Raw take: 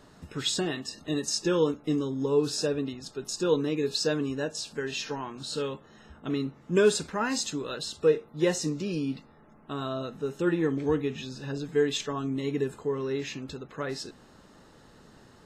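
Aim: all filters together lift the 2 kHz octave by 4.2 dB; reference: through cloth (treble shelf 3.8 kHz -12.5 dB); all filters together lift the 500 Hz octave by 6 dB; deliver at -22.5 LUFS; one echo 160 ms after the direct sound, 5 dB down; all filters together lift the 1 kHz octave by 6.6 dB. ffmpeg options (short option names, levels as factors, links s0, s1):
-af "equalizer=f=500:t=o:g=6,equalizer=f=1000:t=o:g=6,equalizer=f=2000:t=o:g=6,highshelf=f=3800:g=-12.5,aecho=1:1:160:0.562,volume=1.19"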